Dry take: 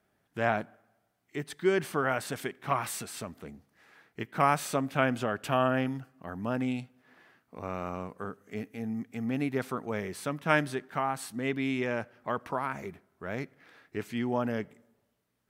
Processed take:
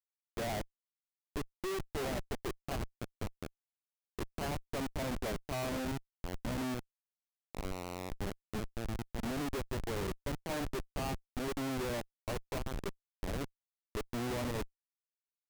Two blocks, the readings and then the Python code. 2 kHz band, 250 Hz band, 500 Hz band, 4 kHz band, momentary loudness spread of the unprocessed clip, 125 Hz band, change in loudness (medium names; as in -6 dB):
-10.5 dB, -7.0 dB, -7.5 dB, -2.0 dB, 15 LU, -4.0 dB, -8.0 dB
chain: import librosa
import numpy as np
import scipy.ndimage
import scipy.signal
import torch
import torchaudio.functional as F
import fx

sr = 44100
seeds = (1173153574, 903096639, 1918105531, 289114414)

y = scipy.ndimage.median_filter(x, 41, mode='constant')
y = scipy.signal.sosfilt(scipy.signal.butter(2, 370.0, 'highpass', fs=sr, output='sos'), y)
y = fx.schmitt(y, sr, flips_db=-39.0)
y = F.gain(torch.from_numpy(y), 4.5).numpy()